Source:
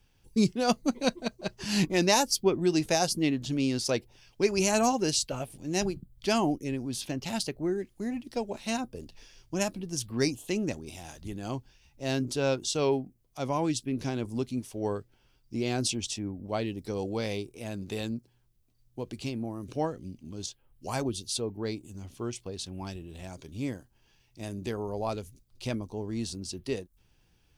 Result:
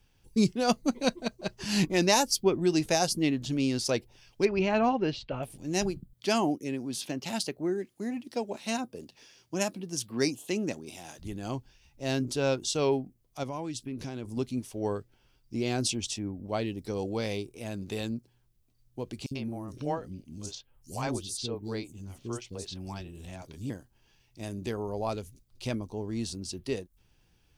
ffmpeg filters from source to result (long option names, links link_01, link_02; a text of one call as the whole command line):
ffmpeg -i in.wav -filter_complex "[0:a]asettb=1/sr,asplit=3[link_01][link_02][link_03];[link_01]atrim=end=4.454[link_04];[link_02]atrim=start=4.45:end=5.43,asetpts=PTS-STARTPTS,afade=type=in:duration=0.004:curve=qsin,afade=type=out:start_time=0.976:duration=0.004:curve=qsin,lowpass=frequency=3200:width=0.5412,lowpass=frequency=3200:width=1.3066[link_05];[link_03]atrim=start=5.426[link_06];[link_04][link_05]acrossfade=duration=0.004:curve1=hsin:curve2=qsin[link_07];[link_07][link_06]acrossfade=duration=0.004:curve1=qsin:curve2=hsin,asettb=1/sr,asplit=3[link_08][link_09][link_10];[link_08]atrim=end=6.134[link_11];[link_09]atrim=start=6.13:end=11.19,asetpts=PTS-STARTPTS,afade=type=in:duration=0.004:curve=qsin,afade=type=out:start_time=5.056:duration=0.004:curve=qsin,highpass=160[link_12];[link_10]atrim=start=11.186[link_13];[link_11][link_12]acrossfade=duration=0.004:curve1=hsin:curve2=qsin[link_14];[link_14][link_13]acrossfade=duration=0.004:curve1=qsin:curve2=hsin,asettb=1/sr,asplit=3[link_15][link_16][link_17];[link_15]atrim=end=13.434[link_18];[link_16]atrim=start=13.43:end=14.37,asetpts=PTS-STARTPTS,afade=type=in:duration=0.004:curve=qsin,afade=type=out:start_time=0.936:duration=0.004:curve=qsin,acompressor=threshold=-34dB:ratio=3:attack=3.2:release=140:knee=1:detection=peak[link_19];[link_17]atrim=start=14.366[link_20];[link_18][link_19]acrossfade=duration=0.004:curve1=hsin:curve2=qsin[link_21];[link_21][link_20]acrossfade=duration=0.004:curve1=qsin:curve2=hsin,asettb=1/sr,asplit=3[link_22][link_23][link_24];[link_22]atrim=end=19.264[link_25];[link_23]atrim=start=19.26:end=23.7,asetpts=PTS-STARTPTS,afade=type=in:duration=0.004:curve=qsin,afade=type=out:start_time=4.436:duration=0.004:curve=qsin,acrossover=split=380|5700[link_26][link_27][link_28];[link_26]adelay=50[link_29];[link_27]adelay=90[link_30];[link_29][link_30][link_28]amix=inputs=3:normalize=0,atrim=end_sample=195804[link_31];[link_24]atrim=start=23.696[link_32];[link_25][link_31]acrossfade=duration=0.004:curve1=hsin:curve2=qsin[link_33];[link_33][link_32]acrossfade=duration=0.004:curve1=qsin:curve2=hsin" out.wav